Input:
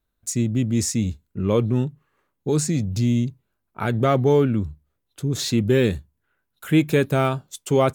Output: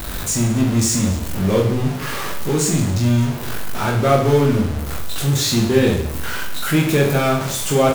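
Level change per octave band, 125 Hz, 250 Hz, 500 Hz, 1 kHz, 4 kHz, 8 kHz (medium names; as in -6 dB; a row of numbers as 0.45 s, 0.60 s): +4.5 dB, +3.0 dB, +3.0 dB, +5.5 dB, +8.5 dB, +8.0 dB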